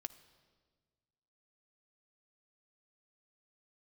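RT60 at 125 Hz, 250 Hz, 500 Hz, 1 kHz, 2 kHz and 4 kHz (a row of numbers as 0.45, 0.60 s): 2.1, 1.9, 1.7, 1.4, 1.3, 1.3 s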